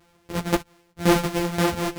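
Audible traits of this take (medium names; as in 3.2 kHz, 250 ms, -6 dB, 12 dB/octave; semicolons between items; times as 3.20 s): a buzz of ramps at a fixed pitch in blocks of 256 samples; tremolo saw down 1.9 Hz, depth 80%; a shimmering, thickened sound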